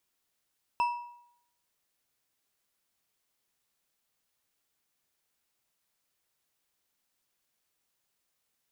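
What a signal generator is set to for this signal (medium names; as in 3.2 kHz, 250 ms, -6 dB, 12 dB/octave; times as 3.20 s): metal hit bar, lowest mode 961 Hz, decay 0.72 s, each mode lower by 11 dB, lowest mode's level -22 dB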